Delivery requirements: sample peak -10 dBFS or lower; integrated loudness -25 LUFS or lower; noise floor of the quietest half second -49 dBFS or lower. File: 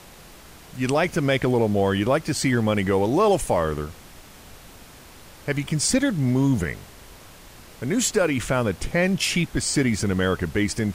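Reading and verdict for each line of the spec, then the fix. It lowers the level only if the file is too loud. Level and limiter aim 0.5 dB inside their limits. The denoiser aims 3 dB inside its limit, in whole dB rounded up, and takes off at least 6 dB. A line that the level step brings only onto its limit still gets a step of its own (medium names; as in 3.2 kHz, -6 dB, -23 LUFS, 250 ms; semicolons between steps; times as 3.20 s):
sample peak -7.5 dBFS: fail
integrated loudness -22.5 LUFS: fail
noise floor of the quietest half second -45 dBFS: fail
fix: noise reduction 6 dB, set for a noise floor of -45 dBFS; trim -3 dB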